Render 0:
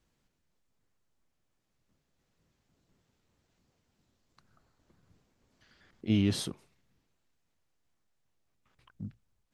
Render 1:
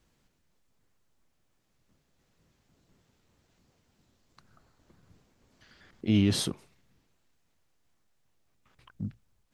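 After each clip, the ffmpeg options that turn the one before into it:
ffmpeg -i in.wav -af "alimiter=limit=-20dB:level=0:latency=1:release=52,volume=5.5dB" out.wav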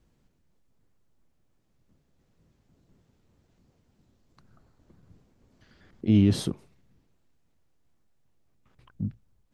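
ffmpeg -i in.wav -af "tiltshelf=frequency=700:gain=5" out.wav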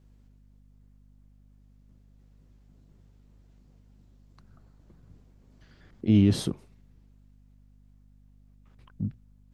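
ffmpeg -i in.wav -af "aeval=exprs='val(0)+0.00158*(sin(2*PI*50*n/s)+sin(2*PI*2*50*n/s)/2+sin(2*PI*3*50*n/s)/3+sin(2*PI*4*50*n/s)/4+sin(2*PI*5*50*n/s)/5)':channel_layout=same" out.wav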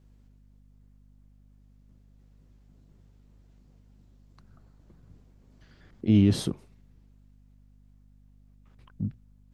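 ffmpeg -i in.wav -af anull out.wav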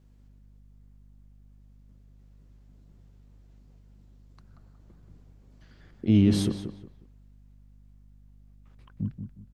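ffmpeg -i in.wav -filter_complex "[0:a]asplit=2[link_01][link_02];[link_02]adelay=181,lowpass=frequency=2900:poles=1,volume=-8dB,asplit=2[link_03][link_04];[link_04]adelay=181,lowpass=frequency=2900:poles=1,volume=0.28,asplit=2[link_05][link_06];[link_06]adelay=181,lowpass=frequency=2900:poles=1,volume=0.28[link_07];[link_01][link_03][link_05][link_07]amix=inputs=4:normalize=0" out.wav

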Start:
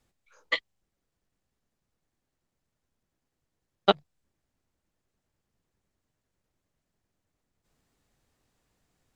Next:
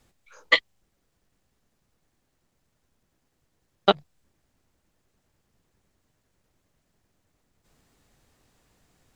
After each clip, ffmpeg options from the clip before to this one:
ffmpeg -i in.wav -af "alimiter=limit=-11dB:level=0:latency=1:release=115,volume=9dB" out.wav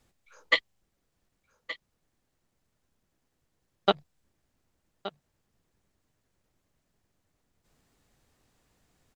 ffmpeg -i in.wav -af "aecho=1:1:1172:0.188,volume=-4.5dB" out.wav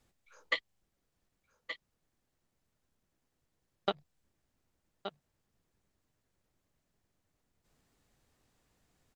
ffmpeg -i in.wav -af "acompressor=threshold=-24dB:ratio=4,volume=-4dB" out.wav

